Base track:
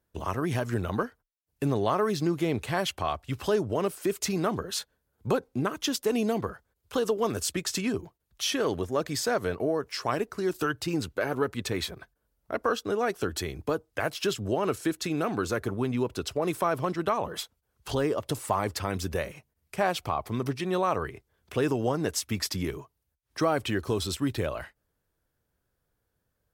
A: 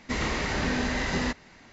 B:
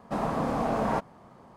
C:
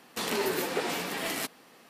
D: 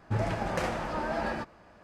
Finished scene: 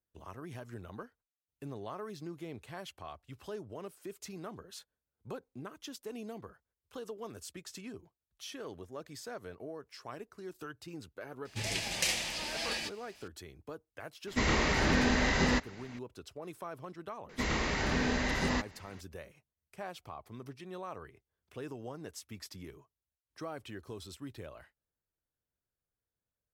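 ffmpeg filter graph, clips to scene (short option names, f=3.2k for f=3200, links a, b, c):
-filter_complex "[1:a]asplit=2[a][b];[0:a]volume=-16.5dB[c];[4:a]aexciter=amount=10.1:drive=7.6:freq=2.1k,atrim=end=1.83,asetpts=PTS-STARTPTS,volume=-11.5dB,afade=t=in:d=0.004:c=hsin,afade=t=out:st=1.826:d=0.004:c=hsin,adelay=11450[d];[a]atrim=end=1.72,asetpts=PTS-STARTPTS,afade=t=in:d=0.004:c=hsin,afade=t=out:st=1.716:d=0.004:c=hsin,adelay=14270[e];[b]atrim=end=1.72,asetpts=PTS-STARTPTS,volume=-3.5dB,afade=t=in:d=0.004:c=hsin,afade=t=out:st=1.716:d=0.004:c=hsin,adelay=17290[f];[c][d][e][f]amix=inputs=4:normalize=0"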